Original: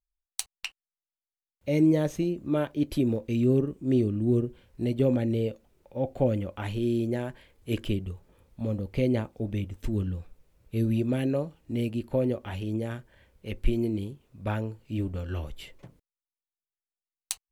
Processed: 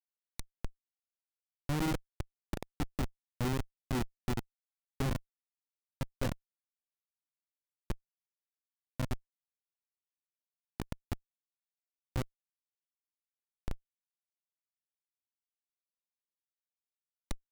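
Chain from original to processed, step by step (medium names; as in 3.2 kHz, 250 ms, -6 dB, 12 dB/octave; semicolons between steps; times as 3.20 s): Schmitt trigger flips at -20 dBFS; trim -1.5 dB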